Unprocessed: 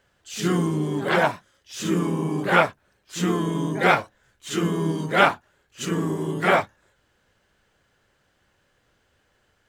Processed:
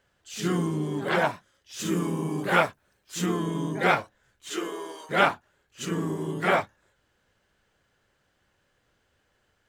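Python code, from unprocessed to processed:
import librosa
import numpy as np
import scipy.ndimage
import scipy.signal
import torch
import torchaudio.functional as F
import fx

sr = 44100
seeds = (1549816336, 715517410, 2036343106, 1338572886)

y = fx.high_shelf(x, sr, hz=6800.0, db=7.0, at=(1.79, 3.26))
y = fx.highpass(y, sr, hz=fx.line((4.48, 280.0), (5.09, 610.0)), slope=24, at=(4.48, 5.09), fade=0.02)
y = y * 10.0 ** (-4.0 / 20.0)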